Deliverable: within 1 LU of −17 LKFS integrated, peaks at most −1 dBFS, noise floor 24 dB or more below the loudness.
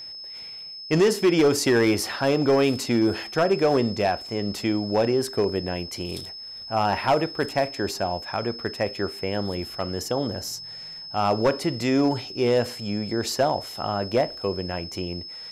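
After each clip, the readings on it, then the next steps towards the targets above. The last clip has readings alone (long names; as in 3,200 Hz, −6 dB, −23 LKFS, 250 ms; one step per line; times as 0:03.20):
share of clipped samples 0.7%; peaks flattened at −13.5 dBFS; interfering tone 5,200 Hz; level of the tone −36 dBFS; integrated loudness −24.5 LKFS; sample peak −13.5 dBFS; target loudness −17.0 LKFS
→ clipped peaks rebuilt −13.5 dBFS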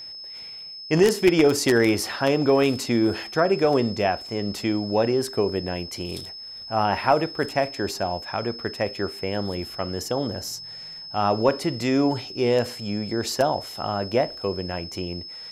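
share of clipped samples 0.0%; interfering tone 5,200 Hz; level of the tone −36 dBFS
→ notch filter 5,200 Hz, Q 30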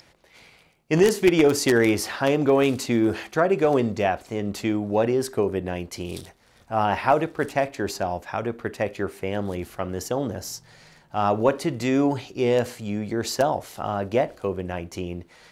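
interfering tone none found; integrated loudness −24.0 LKFS; sample peak −4.5 dBFS; target loudness −17.0 LKFS
→ level +7 dB
brickwall limiter −1 dBFS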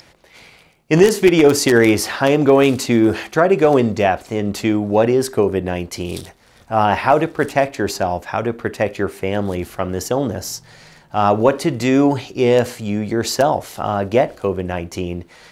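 integrated loudness −17.5 LKFS; sample peak −1.0 dBFS; background noise floor −50 dBFS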